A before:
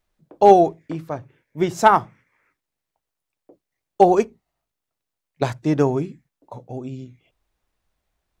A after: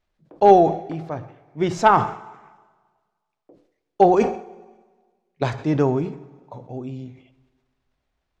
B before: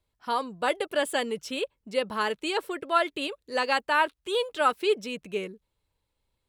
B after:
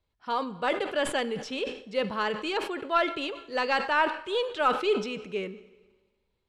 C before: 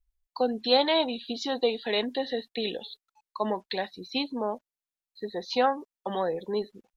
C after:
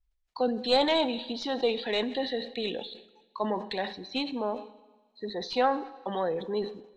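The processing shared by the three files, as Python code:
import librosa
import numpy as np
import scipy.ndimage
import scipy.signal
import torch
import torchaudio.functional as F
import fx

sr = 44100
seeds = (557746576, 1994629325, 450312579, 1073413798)

y = fx.tracing_dist(x, sr, depth_ms=0.023)
y = scipy.signal.sosfilt(scipy.signal.butter(2, 5200.0, 'lowpass', fs=sr, output='sos'), y)
y = fx.transient(y, sr, attack_db=-1, sustain_db=3)
y = fx.rev_plate(y, sr, seeds[0], rt60_s=1.5, hf_ratio=0.9, predelay_ms=0, drr_db=15.5)
y = fx.sustainer(y, sr, db_per_s=110.0)
y = y * 10.0 ** (-1.0 / 20.0)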